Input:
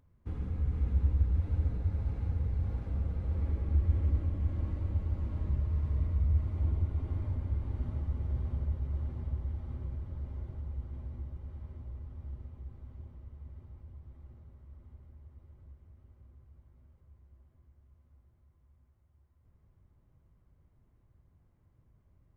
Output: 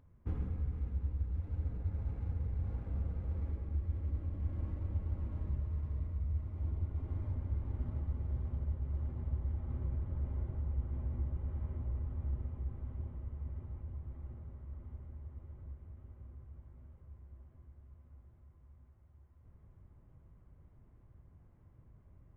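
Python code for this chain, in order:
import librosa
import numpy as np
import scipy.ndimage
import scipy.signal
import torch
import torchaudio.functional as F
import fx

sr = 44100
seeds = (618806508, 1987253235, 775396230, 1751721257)

y = fx.wiener(x, sr, points=9)
y = fx.rider(y, sr, range_db=10, speed_s=0.5)
y = F.gain(torch.from_numpy(y), -4.5).numpy()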